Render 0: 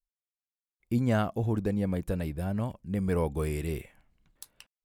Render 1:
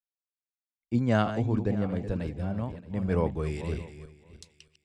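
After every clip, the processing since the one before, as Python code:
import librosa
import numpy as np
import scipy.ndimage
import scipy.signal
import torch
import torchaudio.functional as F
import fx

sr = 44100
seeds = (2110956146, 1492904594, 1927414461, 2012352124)

y = fx.reverse_delay_fb(x, sr, ms=312, feedback_pct=49, wet_db=-8)
y = scipy.signal.sosfilt(scipy.signal.butter(4, 7000.0, 'lowpass', fs=sr, output='sos'), y)
y = fx.band_widen(y, sr, depth_pct=70)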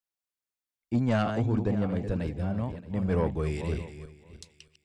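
y = 10.0 ** (-19.5 / 20.0) * np.tanh(x / 10.0 ** (-19.5 / 20.0))
y = y * librosa.db_to_amplitude(2.0)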